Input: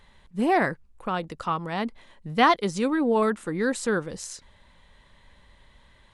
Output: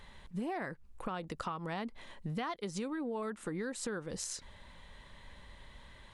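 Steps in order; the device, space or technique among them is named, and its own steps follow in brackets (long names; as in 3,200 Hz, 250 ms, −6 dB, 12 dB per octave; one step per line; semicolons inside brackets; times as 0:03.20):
serial compression, peaks first (downward compressor 6 to 1, threshold −32 dBFS, peak gain reduction 16.5 dB; downward compressor 2 to 1, threshold −41 dBFS, peak gain reduction 7 dB)
level +2 dB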